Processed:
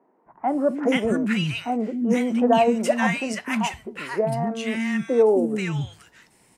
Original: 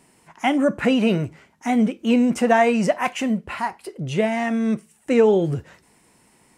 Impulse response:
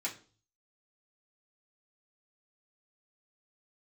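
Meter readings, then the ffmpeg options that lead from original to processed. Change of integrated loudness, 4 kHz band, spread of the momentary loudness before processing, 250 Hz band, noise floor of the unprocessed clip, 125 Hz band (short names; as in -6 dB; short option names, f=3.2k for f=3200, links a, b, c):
-2.0 dB, 0.0 dB, 12 LU, -2.5 dB, -59 dBFS, -1.5 dB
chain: -filter_complex "[0:a]bandreject=f=50:t=h:w=6,bandreject=f=100:t=h:w=6,acrossover=split=260|1200[a][b][c];[a]adelay=260[d];[c]adelay=480[e];[d][b][e]amix=inputs=3:normalize=0"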